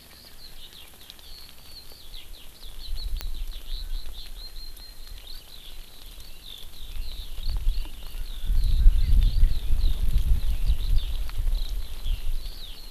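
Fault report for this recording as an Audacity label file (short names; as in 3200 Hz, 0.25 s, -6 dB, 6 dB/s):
3.210000	3.210000	pop -13 dBFS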